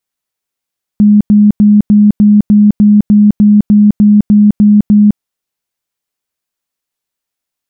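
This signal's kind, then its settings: tone bursts 208 Hz, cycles 43, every 0.30 s, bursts 14, -2 dBFS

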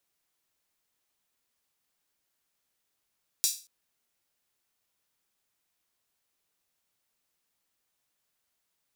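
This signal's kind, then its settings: open hi-hat length 0.23 s, high-pass 5.1 kHz, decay 0.34 s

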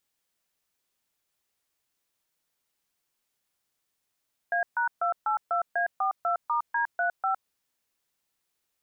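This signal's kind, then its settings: DTMF "A#282A42*D35", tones 110 ms, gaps 137 ms, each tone -26 dBFS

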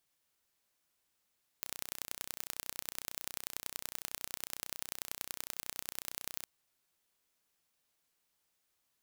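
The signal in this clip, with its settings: pulse train 31 per s, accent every 3, -9.5 dBFS 4.83 s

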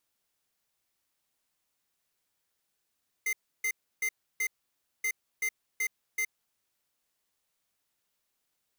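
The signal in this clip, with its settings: beep pattern square 2.08 kHz, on 0.07 s, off 0.31 s, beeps 4, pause 0.57 s, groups 2, -29.5 dBFS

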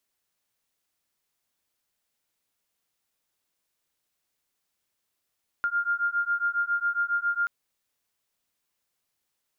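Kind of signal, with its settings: beating tones 1.4 kHz, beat 7.3 Hz, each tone -27 dBFS 1.83 s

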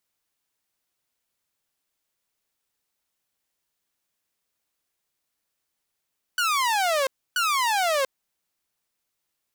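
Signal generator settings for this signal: burst of laser zaps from 1.5 kHz, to 520 Hz, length 0.69 s saw, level -18 dB, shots 2, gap 0.29 s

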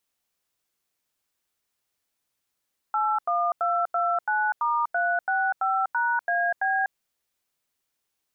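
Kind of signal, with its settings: DTMF "81229*365#AB", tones 246 ms, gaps 88 ms, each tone -24 dBFS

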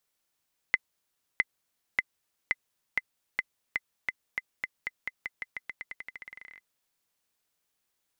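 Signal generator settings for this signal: bouncing ball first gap 0.66 s, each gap 0.89, 2.04 kHz, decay 35 ms -9.5 dBFS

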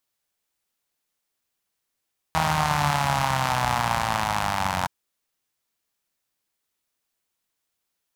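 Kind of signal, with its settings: four-cylinder engine model, changing speed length 2.52 s, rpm 4800, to 2700, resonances 81/140/840 Hz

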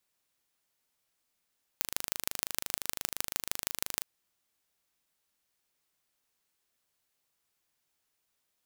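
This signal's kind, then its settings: pulse train 25.8 per s, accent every 4, -1.5 dBFS 2.21 s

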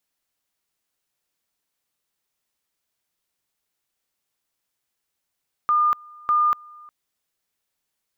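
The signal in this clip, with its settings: two-level tone 1.21 kHz -15.5 dBFS, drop 26 dB, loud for 0.24 s, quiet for 0.36 s, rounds 2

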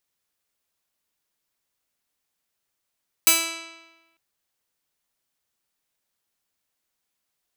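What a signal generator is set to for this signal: plucked string E4, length 0.90 s, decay 1.17 s, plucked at 0.19, bright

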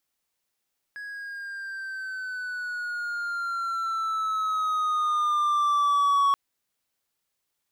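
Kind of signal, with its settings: gliding synth tone triangle, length 5.38 s, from 1.67 kHz, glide -7 st, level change +17 dB, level -16 dB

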